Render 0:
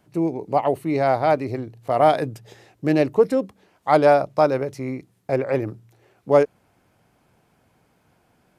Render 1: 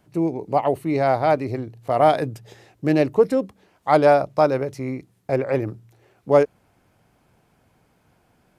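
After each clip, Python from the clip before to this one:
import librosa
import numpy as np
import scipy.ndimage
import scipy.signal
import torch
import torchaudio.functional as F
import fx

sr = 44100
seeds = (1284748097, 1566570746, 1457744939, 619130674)

y = fx.low_shelf(x, sr, hz=70.0, db=6.0)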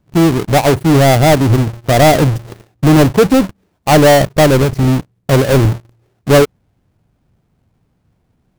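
y = fx.halfwave_hold(x, sr)
y = fx.low_shelf(y, sr, hz=270.0, db=12.0)
y = fx.leveller(y, sr, passes=3)
y = y * 10.0 ** (-5.5 / 20.0)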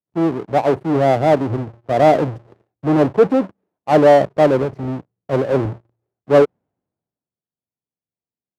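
y = fx.bandpass_q(x, sr, hz=550.0, q=0.67)
y = fx.band_widen(y, sr, depth_pct=70)
y = y * 10.0 ** (-3.5 / 20.0)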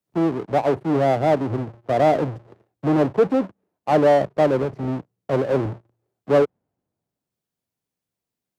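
y = fx.band_squash(x, sr, depth_pct=40)
y = y * 10.0 ** (-4.0 / 20.0)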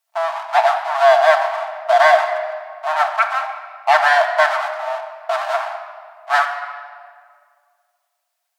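y = fx.fold_sine(x, sr, drive_db=9, ceiling_db=-4.5)
y = fx.brickwall_highpass(y, sr, low_hz=610.0)
y = fx.room_shoebox(y, sr, seeds[0], volume_m3=3800.0, walls='mixed', distance_m=1.6)
y = y * 10.0 ** (-2.0 / 20.0)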